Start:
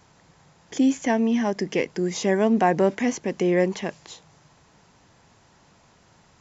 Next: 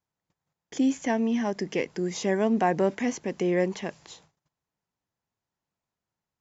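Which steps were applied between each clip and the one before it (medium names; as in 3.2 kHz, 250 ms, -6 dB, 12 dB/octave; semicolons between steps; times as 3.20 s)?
gate -51 dBFS, range -28 dB; trim -4 dB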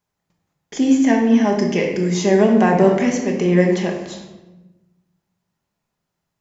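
simulated room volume 490 m³, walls mixed, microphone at 1.3 m; trim +6.5 dB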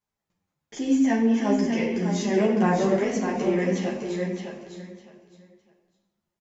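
on a send: feedback delay 608 ms, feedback 22%, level -6 dB; on the sum: three-phase chorus; trim -5 dB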